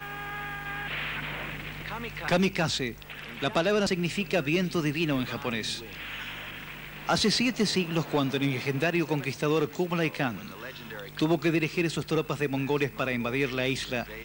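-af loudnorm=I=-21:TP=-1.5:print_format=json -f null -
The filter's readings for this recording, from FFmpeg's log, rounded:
"input_i" : "-28.6",
"input_tp" : "-16.6",
"input_lra" : "2.5",
"input_thresh" : "-38.8",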